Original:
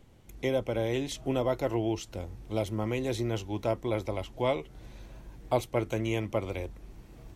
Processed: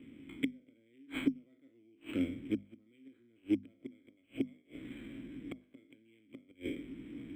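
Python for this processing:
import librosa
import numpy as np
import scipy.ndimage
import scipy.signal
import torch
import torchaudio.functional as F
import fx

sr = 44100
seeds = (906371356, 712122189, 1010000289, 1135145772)

y = fx.spec_trails(x, sr, decay_s=0.52)
y = fx.gate_flip(y, sr, shuts_db=-22.0, range_db=-39)
y = fx.vowel_filter(y, sr, vowel='i')
y = fx.hum_notches(y, sr, base_hz=50, count=5)
y = np.interp(np.arange(len(y)), np.arange(len(y))[::8], y[::8])
y = y * 10.0 ** (17.5 / 20.0)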